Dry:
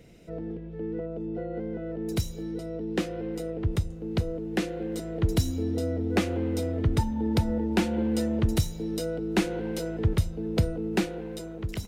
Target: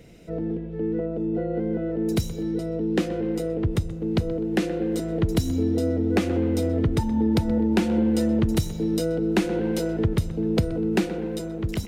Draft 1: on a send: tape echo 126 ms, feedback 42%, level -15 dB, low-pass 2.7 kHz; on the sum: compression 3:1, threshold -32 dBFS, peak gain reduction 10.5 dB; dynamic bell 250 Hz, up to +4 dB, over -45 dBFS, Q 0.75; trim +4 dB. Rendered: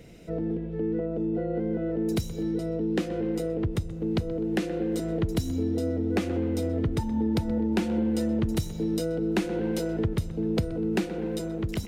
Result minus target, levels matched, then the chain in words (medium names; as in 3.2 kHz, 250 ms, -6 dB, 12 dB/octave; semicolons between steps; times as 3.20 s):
compression: peak gain reduction +4.5 dB
on a send: tape echo 126 ms, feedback 42%, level -15 dB, low-pass 2.7 kHz; on the sum: compression 3:1, threshold -25 dBFS, peak gain reduction 6 dB; dynamic bell 250 Hz, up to +4 dB, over -45 dBFS, Q 0.75; trim +4 dB